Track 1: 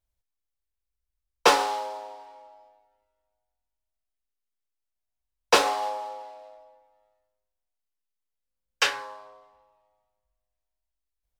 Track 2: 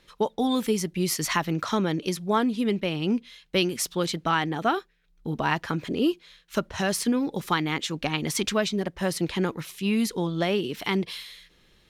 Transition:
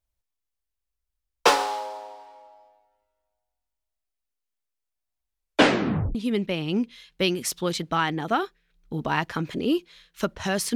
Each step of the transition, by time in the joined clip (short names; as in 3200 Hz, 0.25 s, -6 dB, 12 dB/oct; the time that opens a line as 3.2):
track 1
5.25 tape stop 0.90 s
6.15 switch to track 2 from 2.49 s